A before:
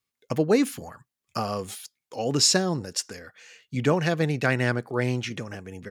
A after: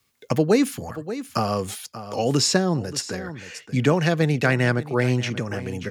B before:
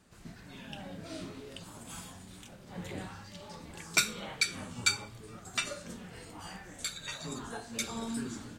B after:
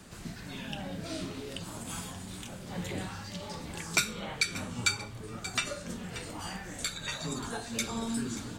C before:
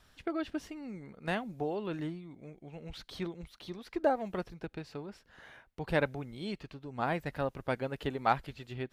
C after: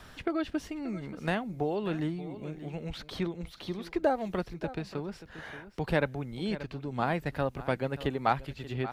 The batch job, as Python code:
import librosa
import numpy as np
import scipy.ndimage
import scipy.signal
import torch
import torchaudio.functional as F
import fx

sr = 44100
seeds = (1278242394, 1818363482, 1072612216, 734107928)

y = fx.low_shelf(x, sr, hz=170.0, db=3.5)
y = y + 10.0 ** (-17.5 / 20.0) * np.pad(y, (int(581 * sr / 1000.0), 0))[:len(y)]
y = fx.band_squash(y, sr, depth_pct=40)
y = y * librosa.db_to_amplitude(3.0)